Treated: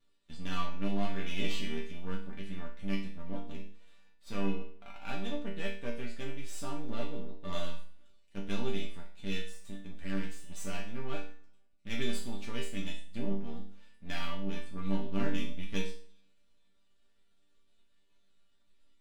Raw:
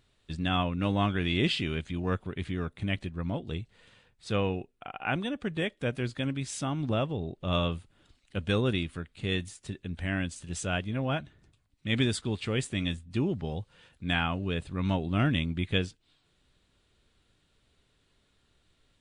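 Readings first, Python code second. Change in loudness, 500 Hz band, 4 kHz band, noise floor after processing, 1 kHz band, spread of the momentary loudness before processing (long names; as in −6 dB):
−8.5 dB, −8.0 dB, −8.5 dB, −65 dBFS, −8.5 dB, 11 LU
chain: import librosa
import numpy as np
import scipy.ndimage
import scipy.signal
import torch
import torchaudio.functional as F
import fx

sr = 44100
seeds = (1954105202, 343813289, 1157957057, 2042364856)

y = np.where(x < 0.0, 10.0 ** (-12.0 / 20.0) * x, x)
y = fx.resonator_bank(y, sr, root=55, chord='minor', decay_s=0.41)
y = fx.rev_double_slope(y, sr, seeds[0], early_s=0.42, late_s=1.5, knee_db=-22, drr_db=9.5)
y = y * librosa.db_to_amplitude(12.5)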